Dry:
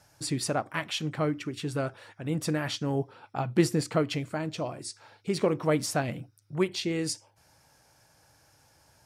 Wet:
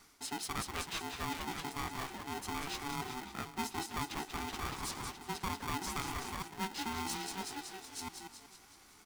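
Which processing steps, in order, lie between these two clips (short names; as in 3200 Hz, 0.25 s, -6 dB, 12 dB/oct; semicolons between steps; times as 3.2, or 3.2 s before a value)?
reverse delay 0.539 s, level -11 dB; on a send: frequency-shifting echo 0.187 s, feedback 58%, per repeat -94 Hz, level -7 dB; on the sum: reverse; compressor 4:1, threshold -38 dBFS, peak gain reduction 18 dB; reverse; HPF 180 Hz 24 dB/oct; polarity switched at an audio rate 570 Hz; gain +1 dB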